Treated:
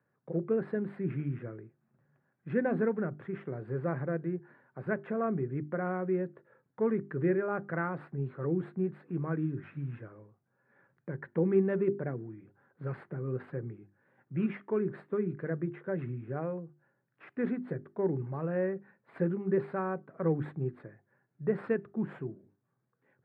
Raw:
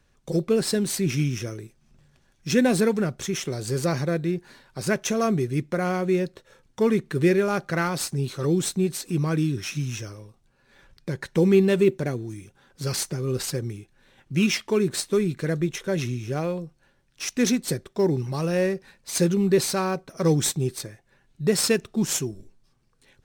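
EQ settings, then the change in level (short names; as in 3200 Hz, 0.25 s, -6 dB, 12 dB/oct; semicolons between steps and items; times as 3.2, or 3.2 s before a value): elliptic band-pass 120–1700 Hz, stop band 50 dB; notches 50/100/150/200/250/300/350/400 Hz; -7.5 dB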